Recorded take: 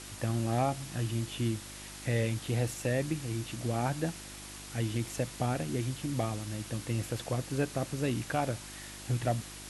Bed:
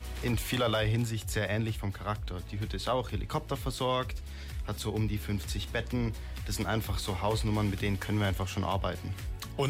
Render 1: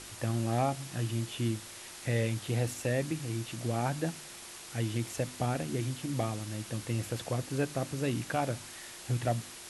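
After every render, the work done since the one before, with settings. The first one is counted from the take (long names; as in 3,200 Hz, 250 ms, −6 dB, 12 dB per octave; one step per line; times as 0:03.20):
hum removal 50 Hz, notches 6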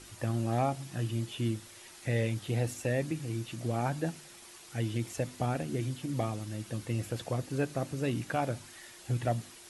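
broadband denoise 7 dB, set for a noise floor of −47 dBFS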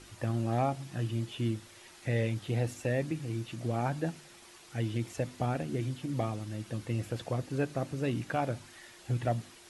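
high-shelf EQ 7,000 Hz −8.5 dB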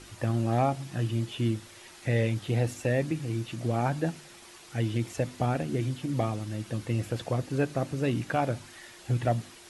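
level +4 dB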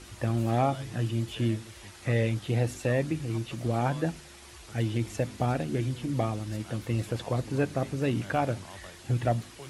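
mix in bed −16 dB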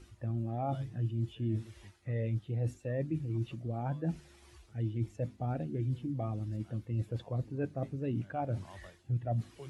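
reversed playback
downward compressor 4 to 1, threshold −35 dBFS, peak gain reduction 12.5 dB
reversed playback
every bin expanded away from the loudest bin 1.5 to 1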